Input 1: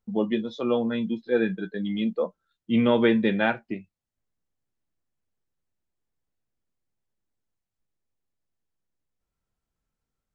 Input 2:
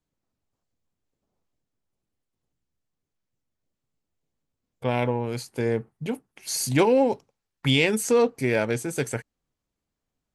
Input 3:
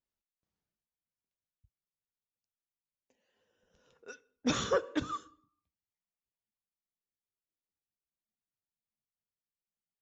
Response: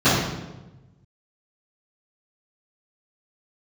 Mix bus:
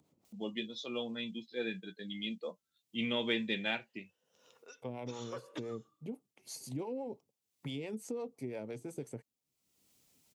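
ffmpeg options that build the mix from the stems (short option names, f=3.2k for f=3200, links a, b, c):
-filter_complex "[0:a]aexciter=amount=5:drive=5.8:freq=2.1k,adelay=250,volume=-15dB[a];[1:a]highpass=f=240:p=1,tiltshelf=f=670:g=7,acrossover=split=490[b][c];[b]aeval=exprs='val(0)*(1-0.7/2+0.7/2*cos(2*PI*5.9*n/s))':c=same[d];[c]aeval=exprs='val(0)*(1-0.7/2-0.7/2*cos(2*PI*5.9*n/s))':c=same[e];[d][e]amix=inputs=2:normalize=0,volume=-8.5dB,asplit=2[f][g];[2:a]highpass=f=810:p=1,adelay=600,volume=-1.5dB[h];[g]apad=whole_len=468231[i];[h][i]sidechaincompress=threshold=-35dB:ratio=8:attack=5.2:release=844[j];[f][j]amix=inputs=2:normalize=0,equalizer=f=1.6k:t=o:w=0.42:g=-9,acompressor=threshold=-38dB:ratio=4,volume=0dB[k];[a][k]amix=inputs=2:normalize=0,acompressor=mode=upward:threshold=-53dB:ratio=2.5,highpass=88"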